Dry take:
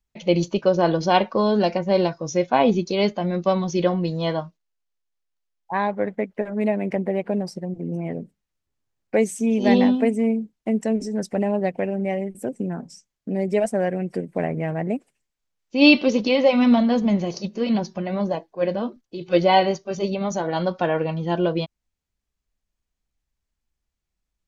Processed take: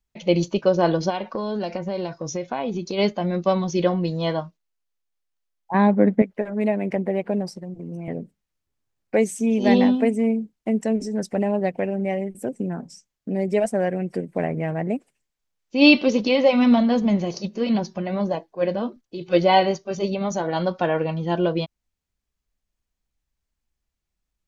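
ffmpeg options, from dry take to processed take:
ffmpeg -i in.wav -filter_complex "[0:a]asplit=3[link_01][link_02][link_03];[link_01]afade=type=out:start_time=1.09:duration=0.02[link_04];[link_02]acompressor=threshold=-23dB:ratio=5:attack=3.2:release=140:knee=1:detection=peak,afade=type=in:start_time=1.09:duration=0.02,afade=type=out:start_time=2.97:duration=0.02[link_05];[link_03]afade=type=in:start_time=2.97:duration=0.02[link_06];[link_04][link_05][link_06]amix=inputs=3:normalize=0,asettb=1/sr,asplit=3[link_07][link_08][link_09];[link_07]atrim=end=5.744[link_10];[link_08]atrim=start=5.74:end=6.22,asetpts=PTS-STARTPTS,afade=type=in:duration=0.004:curve=qsin,afade=type=out:start_time=0.476:duration=0.004:curve=qsin,equalizer=frequency=230:width=0.92:gain=14[link_11];[link_09]atrim=start=6.216[link_12];[link_10][link_11]acrossfade=duration=0.004:curve1=hsin:curve2=qsin[link_13];[link_13][link_12]acrossfade=duration=0.004:curve1=qsin:curve2=hsin,asettb=1/sr,asplit=3[link_14][link_15][link_16];[link_14]atrim=end=7.524[link_17];[link_15]atrim=start=7.52:end=8.08,asetpts=PTS-STARTPTS,afade=type=in:duration=0.004:curve=qsin,afade=type=out:start_time=0.556:duration=0.004:curve=qsin,acrossover=split=120|3000[link_18][link_19][link_20];[link_19]acompressor=threshold=-32dB:ratio=6:attack=3.2:release=140:knee=2.83:detection=peak[link_21];[link_18][link_21][link_20]amix=inputs=3:normalize=0[link_22];[link_16]atrim=start=8.076[link_23];[link_17][link_22]acrossfade=duration=0.004:curve1=hsin:curve2=qsin[link_24];[link_24][link_23]acrossfade=duration=0.004:curve1=qsin:curve2=hsin" out.wav

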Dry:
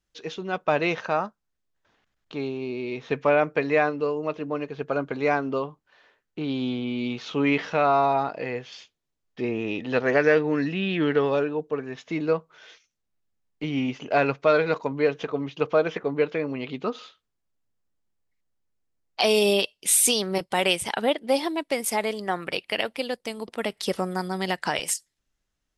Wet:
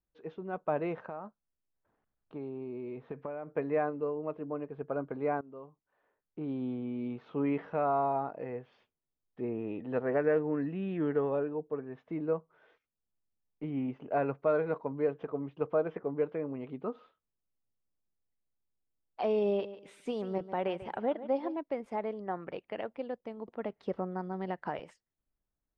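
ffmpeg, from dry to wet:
ffmpeg -i in.wav -filter_complex "[0:a]asettb=1/sr,asplit=3[link_01][link_02][link_03];[link_01]atrim=end=1.014[link_04];[link_02]atrim=start=1.01:end=3.5,asetpts=PTS-STARTPTS,afade=type=in:duration=0.004:curve=qsin,afade=type=out:start_time=2.486:duration=0.004:curve=qsin,acompressor=threshold=-27dB:ratio=6:attack=3.2:release=140:knee=1:detection=peak[link_05];[link_03]atrim=start=3.496[link_06];[link_04][link_05]acrossfade=duration=0.004:curve1=hsin:curve2=qsin[link_07];[link_07][link_06]acrossfade=duration=0.004:curve1=qsin:curve2=hsin,asettb=1/sr,asplit=3[link_08][link_09][link_10];[link_08]atrim=end=19.464[link_11];[link_09]atrim=start=19.46:end=21.57,asetpts=PTS-STARTPTS,afade=type=in:duration=0.004:curve=qsin,afade=type=out:start_time=2.106:duration=0.004:curve=qsin,aecho=1:1:143|286|429:0.2|0.0479|0.0115,atrim=end_sample=93051[link_12];[link_10]atrim=start=21.566[link_13];[link_11][link_12]acrossfade=duration=0.004:curve1=hsin:curve2=qsin[link_14];[link_14][link_13]acrossfade=duration=0.004:curve1=qsin:curve2=hsin,asplit=2[link_15][link_16];[link_15]atrim=end=5.41,asetpts=PTS-STARTPTS,afade=type=out:start_time=5.406:duration=0.004:curve=hsin:silence=0.112202[link_17];[link_16]atrim=start=5.41,asetpts=PTS-STARTPTS,afade=type=in:duration=1.03:silence=0.112202[link_18];[link_17][link_18]concat=n=2:v=0:a=1,lowpass=1100,volume=-7.5dB" out.wav

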